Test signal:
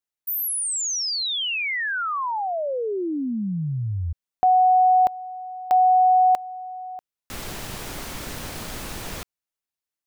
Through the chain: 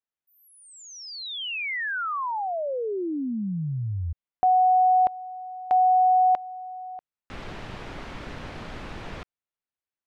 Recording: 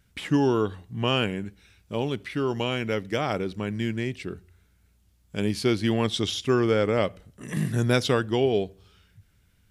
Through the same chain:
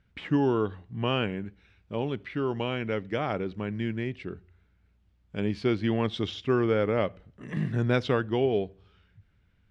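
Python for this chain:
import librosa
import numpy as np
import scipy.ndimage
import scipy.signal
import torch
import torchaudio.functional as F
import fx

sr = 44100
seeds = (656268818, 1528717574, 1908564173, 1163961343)

y = scipy.signal.sosfilt(scipy.signal.butter(2, 2800.0, 'lowpass', fs=sr, output='sos'), x)
y = y * 10.0 ** (-2.5 / 20.0)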